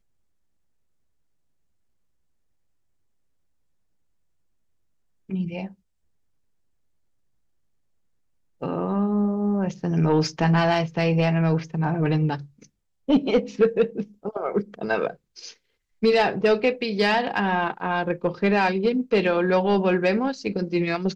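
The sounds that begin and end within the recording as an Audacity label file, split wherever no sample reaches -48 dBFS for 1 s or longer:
5.290000	5.740000	sound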